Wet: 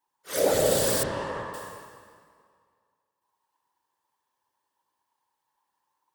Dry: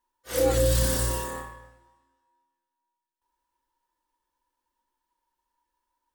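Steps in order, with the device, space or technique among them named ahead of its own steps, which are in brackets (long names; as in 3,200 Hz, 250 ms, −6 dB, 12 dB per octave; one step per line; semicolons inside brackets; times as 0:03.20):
whispering ghost (random phases in short frames; high-pass filter 350 Hz 6 dB per octave; convolution reverb RT60 2.0 s, pre-delay 53 ms, DRR 1 dB)
0:01.03–0:01.54: low-pass filter 2,600 Hz 12 dB per octave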